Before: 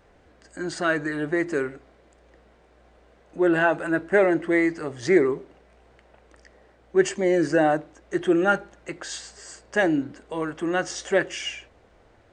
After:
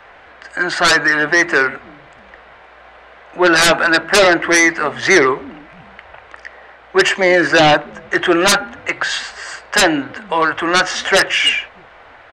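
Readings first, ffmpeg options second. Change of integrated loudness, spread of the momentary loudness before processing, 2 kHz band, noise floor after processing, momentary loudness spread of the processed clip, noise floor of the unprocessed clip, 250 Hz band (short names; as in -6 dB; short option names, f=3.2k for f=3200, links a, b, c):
+10.5 dB, 14 LU, +14.5 dB, -43 dBFS, 10 LU, -57 dBFS, +4.5 dB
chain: -filter_complex "[0:a]acrossover=split=110|740|3500[a][b][c][d];[b]asplit=4[e][f][g][h];[f]adelay=316,afreqshift=-100,volume=-19dB[i];[g]adelay=632,afreqshift=-200,volume=-28.9dB[j];[h]adelay=948,afreqshift=-300,volume=-38.8dB[k];[e][i][j][k]amix=inputs=4:normalize=0[l];[c]aeval=exprs='0.299*sin(PI/2*6.31*val(0)/0.299)':c=same[m];[a][l][m][d]amix=inputs=4:normalize=0,volume=2.5dB"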